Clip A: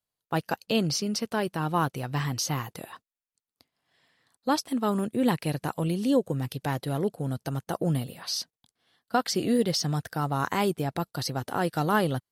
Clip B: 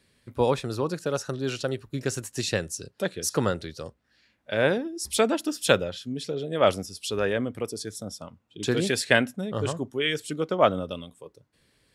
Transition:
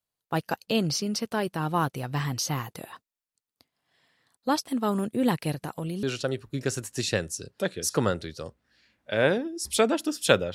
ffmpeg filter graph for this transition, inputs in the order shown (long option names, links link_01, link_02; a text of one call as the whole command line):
ffmpeg -i cue0.wav -i cue1.wav -filter_complex "[0:a]asettb=1/sr,asplit=3[link_01][link_02][link_03];[link_01]atrim=end=5.534[link_04];[link_02]atrim=start=5.53:end=6.03,asetpts=PTS-STARTPTS,afade=type=in:duration=0.004:curve=qsin,afade=type=out:start_time=0.496:duration=0.004:curve=qsin,acompressor=threshold=-29dB:ratio=4:attack=3.2:release=140:knee=1:detection=peak[link_05];[link_03]atrim=start=6.026[link_06];[link_04][link_05]acrossfade=duration=0.004:curve1=hsin:curve2=qsin[link_07];[link_07][link_06]acrossfade=duration=0.004:curve1=qsin:curve2=hsin,apad=whole_dur=10.54,atrim=end=10.54,atrim=end=6.032[link_08];[1:a]atrim=start=1.428:end=5.94[link_09];[link_08][link_09]acrossfade=duration=0.004:curve1=hsin:curve2=hsin" out.wav